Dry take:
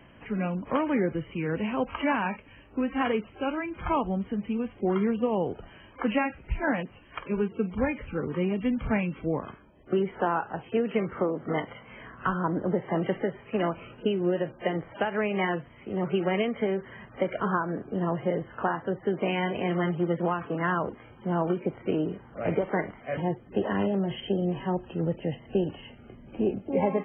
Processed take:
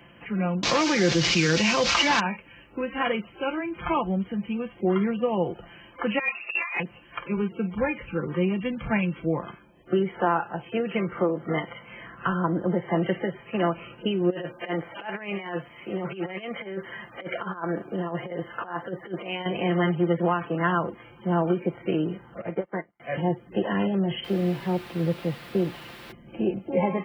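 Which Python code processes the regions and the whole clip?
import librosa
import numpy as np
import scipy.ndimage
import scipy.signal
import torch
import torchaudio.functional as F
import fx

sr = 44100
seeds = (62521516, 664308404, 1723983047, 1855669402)

y = fx.chain(x, sr, fx.delta_mod(bps=32000, step_db=-39.0),
    fx.high_shelf(hz=2100.0, db=11.5),
    fx.env_flatten(amount_pct=70), at=(0.63, 2.2))
y = fx.chain(y, sr, fx.freq_invert(carrier_hz=2700),
    fx.highpass(hz=350.0, slope=12),
    fx.over_compress(threshold_db=-31.0, ratio=-0.5), at=(6.19, 6.8))
y = fx.chain(y, sr, fx.low_shelf(hz=210.0, db=-11.0),
    fx.over_compress(threshold_db=-33.0, ratio=-0.5), at=(14.3, 19.46))
y = fx.chain(y, sr, fx.lowpass(hz=2100.0, slope=12),
    fx.low_shelf(hz=170.0, db=-4.0),
    fx.upward_expand(threshold_db=-46.0, expansion=2.5), at=(22.41, 23.0))
y = fx.chain(y, sr, fx.highpass(hz=45.0, slope=6),
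    fx.quant_dither(seeds[0], bits=6, dither='triangular'),
    fx.air_absorb(metres=460.0), at=(24.24, 26.12))
y = scipy.signal.sosfilt(scipy.signal.butter(2, 52.0, 'highpass', fs=sr, output='sos'), y)
y = fx.high_shelf(y, sr, hz=2600.0, db=7.5)
y = y + 0.54 * np.pad(y, (int(5.8 * sr / 1000.0), 0))[:len(y)]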